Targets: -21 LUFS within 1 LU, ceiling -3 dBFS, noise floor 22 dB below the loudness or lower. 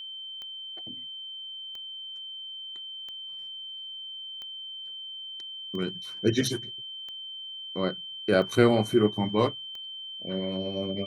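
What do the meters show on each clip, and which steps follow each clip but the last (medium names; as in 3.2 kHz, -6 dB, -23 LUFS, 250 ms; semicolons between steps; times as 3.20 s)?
clicks found 8; steady tone 3.1 kHz; tone level -37 dBFS; loudness -30.5 LUFS; peak level -7.5 dBFS; loudness target -21.0 LUFS
-> de-click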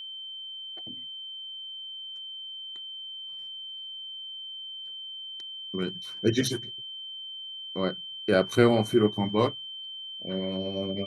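clicks found 0; steady tone 3.1 kHz; tone level -37 dBFS
-> band-stop 3.1 kHz, Q 30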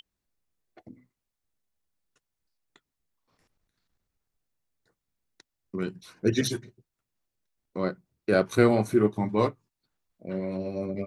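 steady tone not found; loudness -27.5 LUFS; peak level -8.0 dBFS; loudness target -21.0 LUFS
-> trim +6.5 dB; peak limiter -3 dBFS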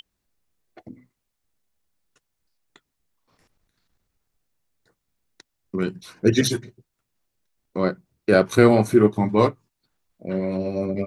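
loudness -21.0 LUFS; peak level -3.0 dBFS; noise floor -79 dBFS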